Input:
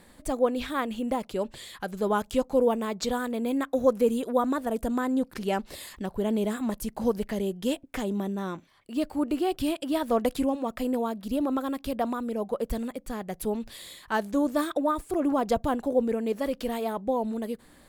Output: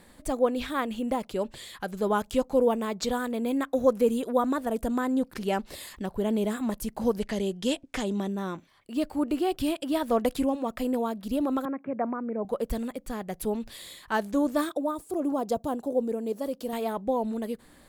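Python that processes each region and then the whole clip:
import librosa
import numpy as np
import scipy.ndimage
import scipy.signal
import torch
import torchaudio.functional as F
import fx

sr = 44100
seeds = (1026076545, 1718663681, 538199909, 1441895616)

y = fx.chain(x, sr, fx.lowpass(hz=6400.0, slope=12),
    fx.high_shelf(hz=3700.0, db=10.5), at=(7.2, 8.28))
y = fx.chain(y, sr, fx.cheby1_bandpass(low_hz=120.0, high_hz=2300.0, order=5),
    fx.air_absorb(metres=200.0), at=(11.65, 12.45))
y = fx.chain(y, sr, fx.highpass(hz=220.0, slope=6),
    fx.peak_eq(hz=2000.0, db=-12.0, octaves=1.7), at=(14.69, 16.73))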